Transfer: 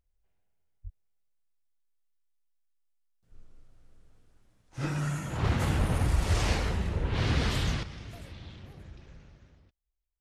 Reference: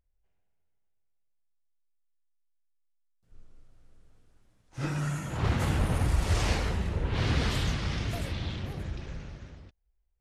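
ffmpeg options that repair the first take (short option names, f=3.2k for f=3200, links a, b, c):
-filter_complex "[0:a]asplit=3[a][b][c];[a]afade=t=out:st=0.83:d=0.02[d];[b]highpass=f=140:w=0.5412,highpass=f=140:w=1.3066,afade=t=in:st=0.83:d=0.02,afade=t=out:st=0.95:d=0.02[e];[c]afade=t=in:st=0.95:d=0.02[f];[d][e][f]amix=inputs=3:normalize=0,asplit=3[g][h][i];[g]afade=t=out:st=5.45:d=0.02[j];[h]highpass=f=140:w=0.5412,highpass=f=140:w=1.3066,afade=t=in:st=5.45:d=0.02,afade=t=out:st=5.57:d=0.02[k];[i]afade=t=in:st=5.57:d=0.02[l];[j][k][l]amix=inputs=3:normalize=0,asetnsamples=n=441:p=0,asendcmd='7.83 volume volume 11.5dB',volume=0dB"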